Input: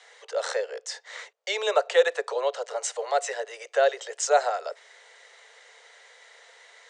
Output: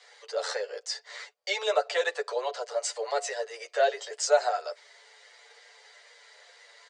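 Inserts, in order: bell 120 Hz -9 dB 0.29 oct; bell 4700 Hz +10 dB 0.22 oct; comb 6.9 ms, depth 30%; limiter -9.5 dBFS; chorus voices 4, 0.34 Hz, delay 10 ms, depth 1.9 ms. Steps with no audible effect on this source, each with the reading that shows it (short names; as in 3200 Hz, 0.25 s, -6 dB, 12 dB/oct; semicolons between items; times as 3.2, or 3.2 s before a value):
bell 120 Hz: input band starts at 360 Hz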